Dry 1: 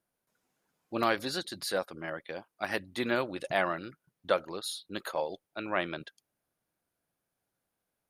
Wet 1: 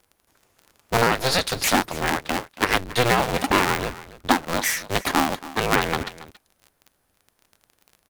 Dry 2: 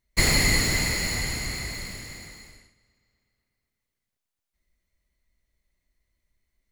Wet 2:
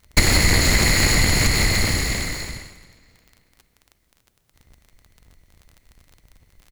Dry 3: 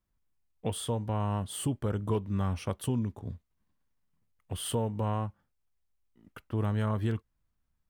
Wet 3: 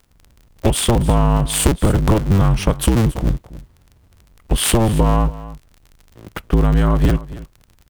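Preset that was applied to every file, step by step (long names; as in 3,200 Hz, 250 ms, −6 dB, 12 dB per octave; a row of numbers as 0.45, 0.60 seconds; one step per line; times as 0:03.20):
sub-harmonics by changed cycles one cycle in 2, inverted
low-shelf EQ 100 Hz +5.5 dB
downward compressor 6 to 1, threshold −29 dBFS
surface crackle 24 per second −49 dBFS
single-tap delay 278 ms −17 dB
normalise the peak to −2 dBFS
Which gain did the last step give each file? +14.0, +15.5, +18.5 decibels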